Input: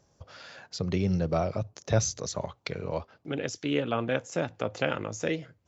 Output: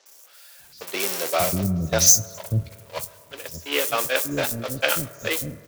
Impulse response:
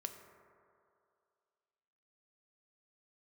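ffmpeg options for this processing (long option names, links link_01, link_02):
-filter_complex "[0:a]aeval=exprs='val(0)+0.5*0.0376*sgn(val(0))':channel_layout=same,agate=range=-29dB:threshold=-25dB:ratio=16:detection=peak,crystalizer=i=6.5:c=0,acrossover=split=340|5200[link_01][link_02][link_03];[link_03]adelay=60[link_04];[link_01]adelay=590[link_05];[link_05][link_02][link_04]amix=inputs=3:normalize=0,asplit=2[link_06][link_07];[1:a]atrim=start_sample=2205[link_08];[link_07][link_08]afir=irnorm=-1:irlink=0,volume=-4dB[link_09];[link_06][link_09]amix=inputs=2:normalize=0,volume=-1dB"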